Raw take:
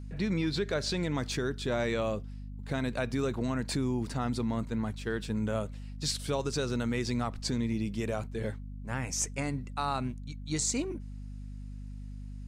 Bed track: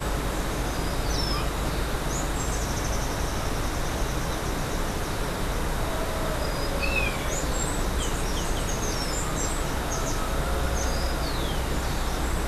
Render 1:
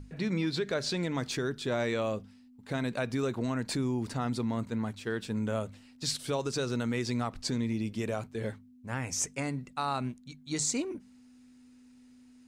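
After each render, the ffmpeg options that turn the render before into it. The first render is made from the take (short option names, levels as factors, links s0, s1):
-af "bandreject=f=50:t=h:w=6,bandreject=f=100:t=h:w=6,bandreject=f=150:t=h:w=6,bandreject=f=200:t=h:w=6"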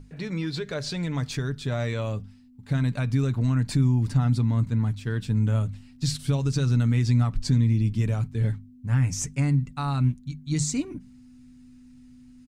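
-af "asubboost=boost=10:cutoff=150,aecho=1:1:6.9:0.36"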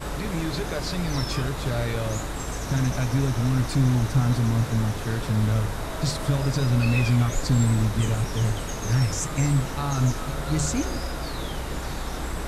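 -filter_complex "[1:a]volume=0.668[s0];[0:a][s0]amix=inputs=2:normalize=0"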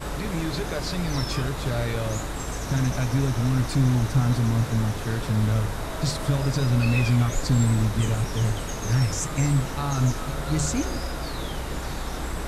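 -af anull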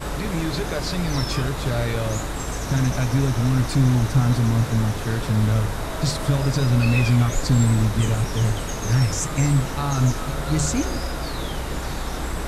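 -af "volume=1.41"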